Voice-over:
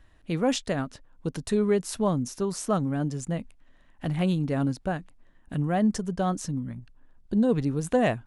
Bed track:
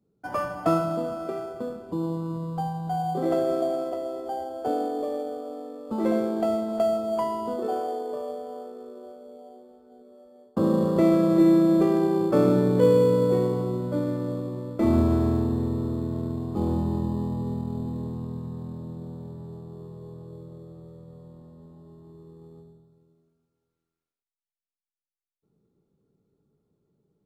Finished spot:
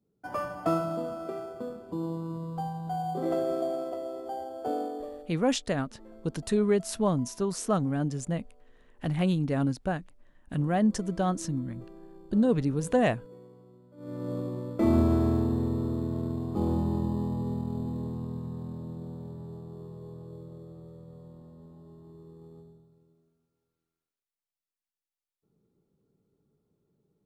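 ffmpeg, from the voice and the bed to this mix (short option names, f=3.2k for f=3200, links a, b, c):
-filter_complex "[0:a]adelay=5000,volume=-1dB[a];[1:a]volume=21dB,afade=t=out:st=4.78:d=0.58:silence=0.0707946,afade=t=in:st=13.97:d=0.42:silence=0.0530884[b];[a][b]amix=inputs=2:normalize=0"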